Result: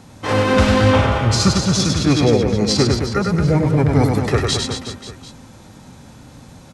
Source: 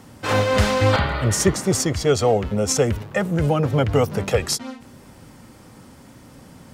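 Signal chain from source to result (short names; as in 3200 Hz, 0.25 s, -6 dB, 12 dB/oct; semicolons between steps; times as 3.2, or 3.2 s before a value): formant shift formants -5 st; reverse bouncing-ball echo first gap 0.1 s, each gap 1.2×, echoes 5; gain +2 dB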